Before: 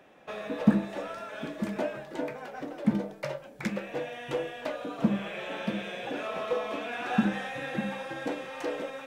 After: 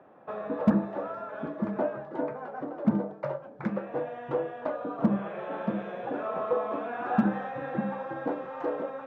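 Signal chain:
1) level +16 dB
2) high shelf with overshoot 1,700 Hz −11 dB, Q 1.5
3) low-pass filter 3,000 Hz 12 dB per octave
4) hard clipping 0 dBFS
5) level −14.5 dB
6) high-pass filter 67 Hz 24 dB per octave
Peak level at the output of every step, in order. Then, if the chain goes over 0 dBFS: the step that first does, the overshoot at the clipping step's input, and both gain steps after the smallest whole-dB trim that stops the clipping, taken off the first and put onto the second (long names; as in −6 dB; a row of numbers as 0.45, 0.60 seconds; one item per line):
+7.0, +7.0, +7.0, 0.0, −14.5, −9.5 dBFS
step 1, 7.0 dB
step 1 +9 dB, step 5 −7.5 dB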